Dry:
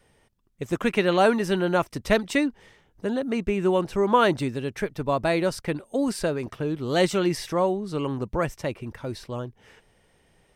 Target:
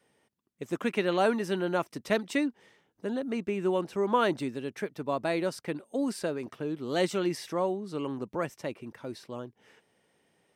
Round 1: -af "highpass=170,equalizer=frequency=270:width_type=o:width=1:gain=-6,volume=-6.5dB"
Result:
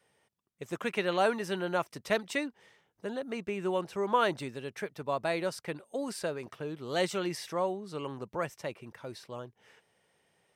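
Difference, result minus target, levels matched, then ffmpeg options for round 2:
250 Hz band −3.5 dB
-af "highpass=170,equalizer=frequency=270:width_type=o:width=1:gain=2.5,volume=-6.5dB"

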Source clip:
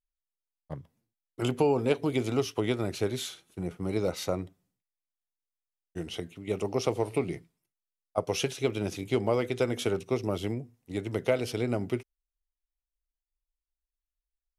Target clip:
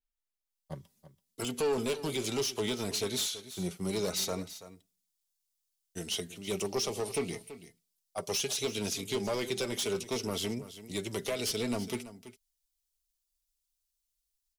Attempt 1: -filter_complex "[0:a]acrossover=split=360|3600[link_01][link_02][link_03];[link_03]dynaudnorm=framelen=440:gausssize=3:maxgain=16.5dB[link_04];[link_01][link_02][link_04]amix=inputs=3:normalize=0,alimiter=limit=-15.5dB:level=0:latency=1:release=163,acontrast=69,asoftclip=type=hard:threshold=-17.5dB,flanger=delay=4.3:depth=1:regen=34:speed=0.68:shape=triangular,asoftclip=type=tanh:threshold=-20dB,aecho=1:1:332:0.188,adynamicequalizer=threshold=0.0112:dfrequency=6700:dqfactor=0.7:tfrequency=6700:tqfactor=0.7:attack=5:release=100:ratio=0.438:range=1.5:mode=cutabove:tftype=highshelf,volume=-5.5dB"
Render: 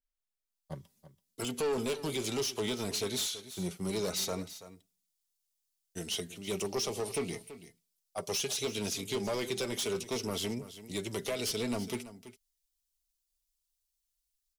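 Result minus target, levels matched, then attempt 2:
soft clipping: distortion +12 dB
-filter_complex "[0:a]acrossover=split=360|3600[link_01][link_02][link_03];[link_03]dynaudnorm=framelen=440:gausssize=3:maxgain=16.5dB[link_04];[link_01][link_02][link_04]amix=inputs=3:normalize=0,alimiter=limit=-15.5dB:level=0:latency=1:release=163,acontrast=69,asoftclip=type=hard:threshold=-17.5dB,flanger=delay=4.3:depth=1:regen=34:speed=0.68:shape=triangular,asoftclip=type=tanh:threshold=-13dB,aecho=1:1:332:0.188,adynamicequalizer=threshold=0.0112:dfrequency=6700:dqfactor=0.7:tfrequency=6700:tqfactor=0.7:attack=5:release=100:ratio=0.438:range=1.5:mode=cutabove:tftype=highshelf,volume=-5.5dB"

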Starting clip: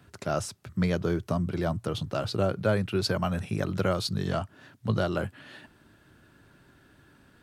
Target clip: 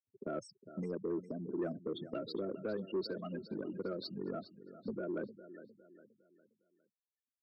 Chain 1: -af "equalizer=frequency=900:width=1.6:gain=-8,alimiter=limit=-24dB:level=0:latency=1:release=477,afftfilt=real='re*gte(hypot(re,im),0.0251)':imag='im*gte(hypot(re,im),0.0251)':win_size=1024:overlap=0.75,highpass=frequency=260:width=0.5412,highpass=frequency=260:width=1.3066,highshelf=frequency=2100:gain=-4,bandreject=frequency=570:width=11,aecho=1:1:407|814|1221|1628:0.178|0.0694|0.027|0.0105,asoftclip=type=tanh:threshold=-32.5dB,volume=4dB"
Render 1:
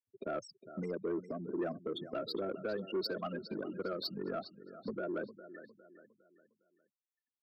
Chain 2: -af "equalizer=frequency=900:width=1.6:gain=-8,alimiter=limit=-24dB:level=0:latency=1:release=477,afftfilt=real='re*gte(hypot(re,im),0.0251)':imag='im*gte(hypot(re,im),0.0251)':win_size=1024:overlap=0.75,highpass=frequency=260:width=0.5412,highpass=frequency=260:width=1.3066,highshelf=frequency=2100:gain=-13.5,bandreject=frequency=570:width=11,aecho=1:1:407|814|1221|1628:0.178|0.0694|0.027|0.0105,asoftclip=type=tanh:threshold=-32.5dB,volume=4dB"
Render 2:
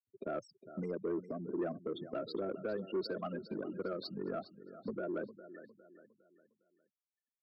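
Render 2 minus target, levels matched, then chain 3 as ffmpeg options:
1,000 Hz band +3.5 dB
-af "equalizer=frequency=900:width=1.6:gain=-19.5,alimiter=limit=-24dB:level=0:latency=1:release=477,afftfilt=real='re*gte(hypot(re,im),0.0251)':imag='im*gte(hypot(re,im),0.0251)':win_size=1024:overlap=0.75,highpass=frequency=260:width=0.5412,highpass=frequency=260:width=1.3066,highshelf=frequency=2100:gain=-13.5,bandreject=frequency=570:width=11,aecho=1:1:407|814|1221|1628:0.178|0.0694|0.027|0.0105,asoftclip=type=tanh:threshold=-32.5dB,volume=4dB"

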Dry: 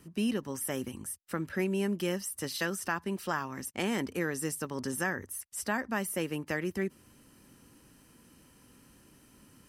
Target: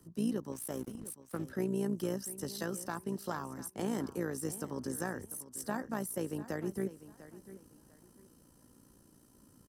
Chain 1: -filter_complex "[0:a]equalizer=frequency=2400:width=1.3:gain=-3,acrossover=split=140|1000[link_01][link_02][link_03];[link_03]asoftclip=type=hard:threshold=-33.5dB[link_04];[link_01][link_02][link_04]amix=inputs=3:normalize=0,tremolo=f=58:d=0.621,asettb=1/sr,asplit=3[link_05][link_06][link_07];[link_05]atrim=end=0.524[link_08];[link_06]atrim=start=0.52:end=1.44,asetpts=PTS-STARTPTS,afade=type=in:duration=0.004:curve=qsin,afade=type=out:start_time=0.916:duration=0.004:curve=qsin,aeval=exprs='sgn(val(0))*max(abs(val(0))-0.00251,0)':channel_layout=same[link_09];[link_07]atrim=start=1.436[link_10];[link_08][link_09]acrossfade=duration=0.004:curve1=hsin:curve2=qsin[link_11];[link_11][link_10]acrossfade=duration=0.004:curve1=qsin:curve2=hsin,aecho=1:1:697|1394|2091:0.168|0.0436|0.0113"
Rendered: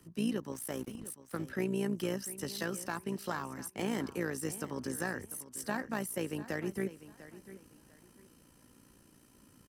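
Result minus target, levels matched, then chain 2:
2,000 Hz band +5.0 dB
-filter_complex "[0:a]equalizer=frequency=2400:width=1.3:gain=-15,acrossover=split=140|1000[link_01][link_02][link_03];[link_03]asoftclip=type=hard:threshold=-33.5dB[link_04];[link_01][link_02][link_04]amix=inputs=3:normalize=0,tremolo=f=58:d=0.621,asettb=1/sr,asplit=3[link_05][link_06][link_07];[link_05]atrim=end=0.524[link_08];[link_06]atrim=start=0.52:end=1.44,asetpts=PTS-STARTPTS,afade=type=in:duration=0.004:curve=qsin,afade=type=out:start_time=0.916:duration=0.004:curve=qsin,aeval=exprs='sgn(val(0))*max(abs(val(0))-0.00251,0)':channel_layout=same[link_09];[link_07]atrim=start=1.436[link_10];[link_08][link_09]acrossfade=duration=0.004:curve1=hsin:curve2=qsin[link_11];[link_11][link_10]acrossfade=duration=0.004:curve1=qsin:curve2=hsin,aecho=1:1:697|1394|2091:0.168|0.0436|0.0113"

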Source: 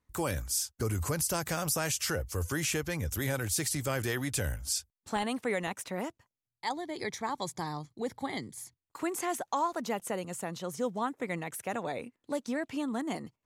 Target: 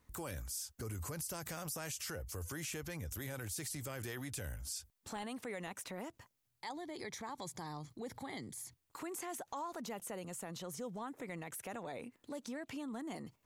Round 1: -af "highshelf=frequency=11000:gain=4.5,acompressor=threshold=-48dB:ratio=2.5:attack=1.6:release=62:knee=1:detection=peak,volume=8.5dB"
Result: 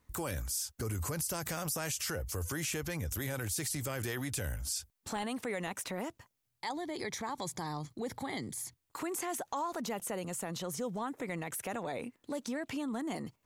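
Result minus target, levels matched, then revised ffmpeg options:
downward compressor: peak gain reduction −6.5 dB
-af "highshelf=frequency=11000:gain=4.5,acompressor=threshold=-59dB:ratio=2.5:attack=1.6:release=62:knee=1:detection=peak,volume=8.5dB"

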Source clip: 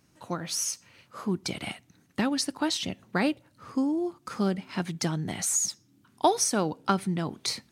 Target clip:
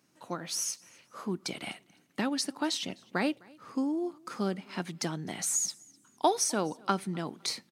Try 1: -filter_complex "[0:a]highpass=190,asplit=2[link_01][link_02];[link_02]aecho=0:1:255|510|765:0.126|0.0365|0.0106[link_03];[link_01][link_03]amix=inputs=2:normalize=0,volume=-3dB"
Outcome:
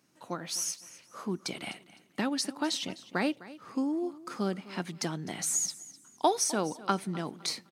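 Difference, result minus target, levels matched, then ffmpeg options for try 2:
echo-to-direct +8 dB
-filter_complex "[0:a]highpass=190,asplit=2[link_01][link_02];[link_02]aecho=0:1:255|510:0.0501|0.0145[link_03];[link_01][link_03]amix=inputs=2:normalize=0,volume=-3dB"

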